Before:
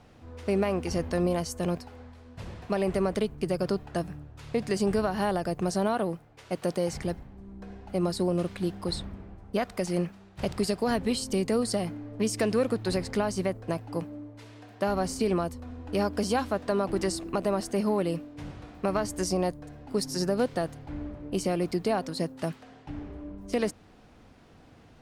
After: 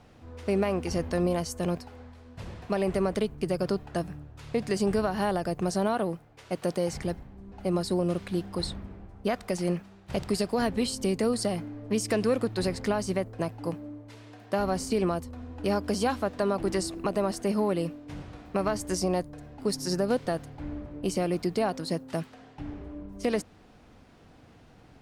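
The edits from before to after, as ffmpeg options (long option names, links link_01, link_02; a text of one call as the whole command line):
ffmpeg -i in.wav -filter_complex "[0:a]asplit=2[link_01][link_02];[link_01]atrim=end=7.522[link_03];[link_02]atrim=start=7.808[link_04];[link_03][link_04]acrossfade=duration=0.004:curve1=hsin:curve2=hsin" out.wav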